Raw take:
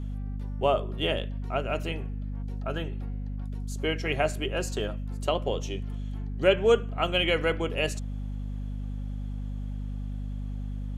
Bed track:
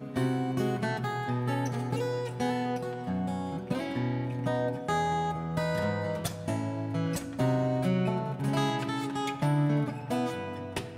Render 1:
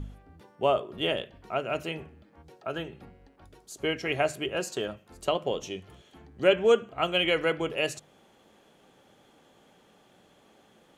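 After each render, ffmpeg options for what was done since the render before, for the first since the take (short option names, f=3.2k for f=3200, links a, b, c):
-af "bandreject=f=50:t=h:w=4,bandreject=f=100:t=h:w=4,bandreject=f=150:t=h:w=4,bandreject=f=200:t=h:w=4,bandreject=f=250:t=h:w=4"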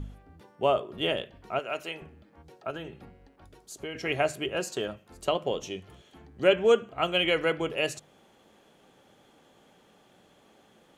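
-filter_complex "[0:a]asettb=1/sr,asplit=3[a][b][c];[a]atrim=end=1.594[d];[b]atrim=start=1.59:end=2.02,asetpts=PTS-STARTPTS,afade=t=in:d=0.004:c=qsin,afade=t=out:st=0.426:d=0.004:c=qsin,highpass=f=620:p=1[e];[c]atrim=start=2.016[f];[d][e]acrossfade=d=0.004:c1=hsin:c2=qsin[g];[g][f]acrossfade=d=0.004:c1=qsin:c2=hsin,asettb=1/sr,asplit=3[h][i][j];[h]atrim=end=2.704[k];[i]atrim=start=2.7:end=3.95,asetpts=PTS-STARTPTS,afade=t=in:d=0.004:c=qsin,afade=t=out:st=1.246:d=0.004:c=qsin,acompressor=threshold=-33dB:ratio=6:attack=3.2:release=140:knee=1:detection=peak[l];[j]atrim=start=3.946[m];[k][l]acrossfade=d=0.004:c1=hsin:c2=qsin[n];[n][m]acrossfade=d=0.004:c1=qsin:c2=hsin"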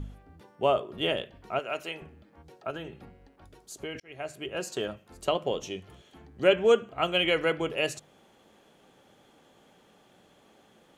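-filter_complex "[0:a]asplit=2[a][b];[a]atrim=end=4,asetpts=PTS-STARTPTS,afade=t=out:st=3.996:d=0.004:c=hsin[c];[b]atrim=start=4,asetpts=PTS-STARTPTS,afade=t=in:d=0.82[d];[c][d]concat=n=2:v=0:a=1"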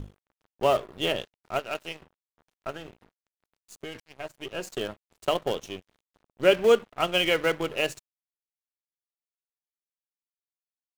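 -filter_complex "[0:a]asplit=2[a][b];[b]acrusher=bits=5:dc=4:mix=0:aa=0.000001,volume=-11dB[c];[a][c]amix=inputs=2:normalize=0,aeval=exprs='sgn(val(0))*max(abs(val(0))-0.00708,0)':c=same"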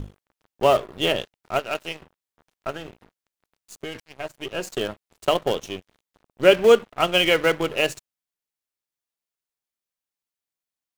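-af "volume=5dB"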